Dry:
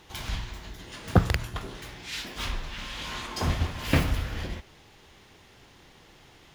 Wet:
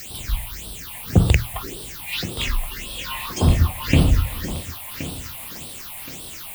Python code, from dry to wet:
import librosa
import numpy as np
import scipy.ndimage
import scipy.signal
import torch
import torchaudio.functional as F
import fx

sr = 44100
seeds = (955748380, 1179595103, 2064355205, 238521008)

p1 = fx.noise_reduce_blind(x, sr, reduce_db=9)
p2 = fx.over_compress(p1, sr, threshold_db=-24.0, ratio=-1.0)
p3 = p1 + F.gain(torch.from_numpy(p2), 2.0).numpy()
p4 = fx.quant_dither(p3, sr, seeds[0], bits=6, dither='triangular')
p5 = fx.phaser_stages(p4, sr, stages=6, low_hz=360.0, high_hz=1900.0, hz=1.8, feedback_pct=40)
p6 = fx.echo_thinned(p5, sr, ms=1072, feedback_pct=41, hz=180.0, wet_db=-12.0)
y = F.gain(torch.from_numpy(p6), 2.0).numpy()